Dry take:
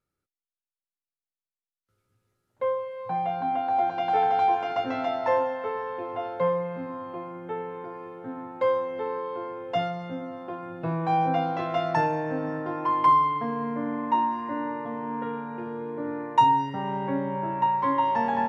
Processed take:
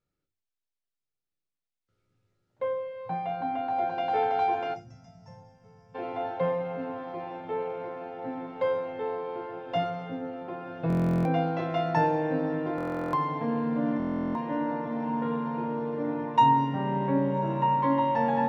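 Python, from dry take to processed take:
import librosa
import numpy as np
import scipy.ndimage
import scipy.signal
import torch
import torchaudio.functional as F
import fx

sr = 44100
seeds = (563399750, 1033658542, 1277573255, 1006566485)

y = fx.peak_eq(x, sr, hz=1200.0, db=-5.5, octaves=1.6)
y = fx.echo_diffused(y, sr, ms=1180, feedback_pct=73, wet_db=-13.5)
y = fx.spec_box(y, sr, start_s=4.74, length_s=1.21, low_hz=230.0, high_hz=4800.0, gain_db=-28)
y = fx.air_absorb(y, sr, metres=87.0)
y = fx.hum_notches(y, sr, base_hz=50, count=10)
y = fx.room_shoebox(y, sr, seeds[0], volume_m3=120.0, walls='furnished', distance_m=0.53)
y = fx.buffer_glitch(y, sr, at_s=(10.88, 12.76, 13.98), block=1024, repeats=15)
y = F.gain(torch.from_numpy(y), 1.5).numpy()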